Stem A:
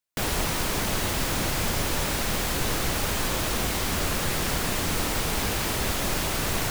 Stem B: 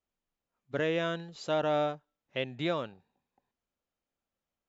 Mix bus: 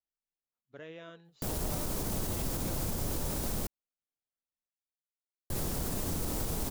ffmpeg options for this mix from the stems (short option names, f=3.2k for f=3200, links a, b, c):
-filter_complex "[0:a]equalizer=f=2.2k:w=0.49:g=-14.5,adelay=1250,volume=-2dB,asplit=3[a][b][c];[a]atrim=end=3.67,asetpts=PTS-STARTPTS,afade=t=out:st=3.666:d=0.004:c=hsin[d];[b]atrim=start=3.67:end=5.5,asetpts=PTS-STARTPTS,volume=0[e];[c]atrim=start=5.5,asetpts=PTS-STARTPTS,afade=t=in:d=0.004:c=hsin[f];[d][e][f]concat=n=3:v=0:a=1[g];[1:a]flanger=delay=0.2:depth=7.3:regen=76:speed=1.1:shape=triangular,volume=-12dB[h];[g][h]amix=inputs=2:normalize=0,alimiter=limit=-24dB:level=0:latency=1:release=55"